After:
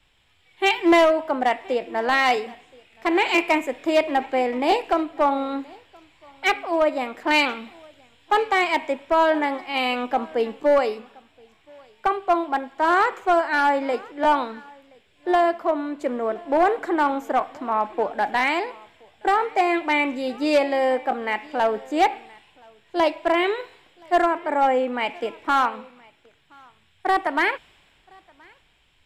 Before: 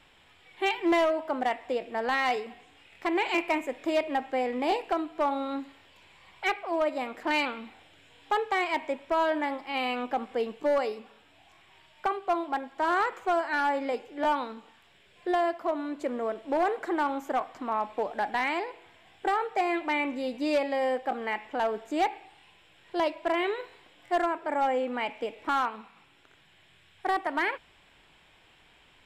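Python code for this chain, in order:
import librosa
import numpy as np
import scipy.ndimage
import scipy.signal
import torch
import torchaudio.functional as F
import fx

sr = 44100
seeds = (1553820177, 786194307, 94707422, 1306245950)

p1 = x + fx.echo_single(x, sr, ms=1024, db=-21.0, dry=0)
p2 = fx.band_widen(p1, sr, depth_pct=40)
y = p2 * 10.0 ** (7.0 / 20.0)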